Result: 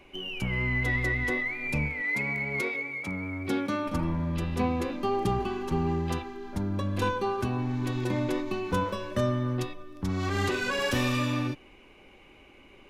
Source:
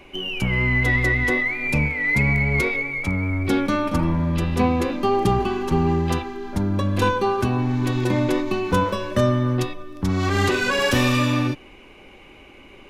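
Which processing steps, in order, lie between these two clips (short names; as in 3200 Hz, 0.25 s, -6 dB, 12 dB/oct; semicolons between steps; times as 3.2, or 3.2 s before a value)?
2.01–3.86 HPF 280 Hz -> 94 Hz 12 dB/oct; gain -8 dB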